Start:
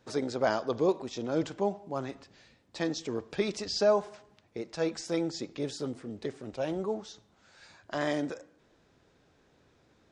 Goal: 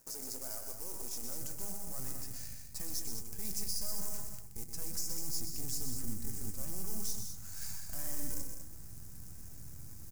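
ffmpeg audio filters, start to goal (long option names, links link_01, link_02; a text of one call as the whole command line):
ffmpeg -i in.wav -filter_complex "[0:a]aeval=exprs='if(lt(val(0),0),0.251*val(0),val(0))':channel_layout=same,highshelf=frequency=3900:gain=-6.5,areverse,acompressor=threshold=-45dB:ratio=6,areverse,alimiter=level_in=21.5dB:limit=-24dB:level=0:latency=1:release=91,volume=-21.5dB,acrusher=bits=3:mode=log:mix=0:aa=0.000001,aexciter=amount=13.9:drive=5.6:freq=5400,asubboost=boost=11.5:cutoff=130,asplit=2[link_01][link_02];[link_02]aecho=0:1:125.4|201.2:0.447|0.398[link_03];[link_01][link_03]amix=inputs=2:normalize=0,volume=4dB" out.wav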